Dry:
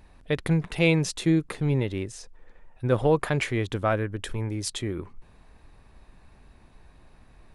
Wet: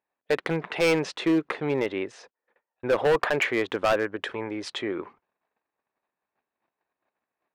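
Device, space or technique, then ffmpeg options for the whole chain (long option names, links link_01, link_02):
walkie-talkie: -af "highpass=440,lowpass=2500,asoftclip=type=hard:threshold=-25dB,agate=range=-32dB:threshold=-59dB:ratio=16:detection=peak,volume=8dB"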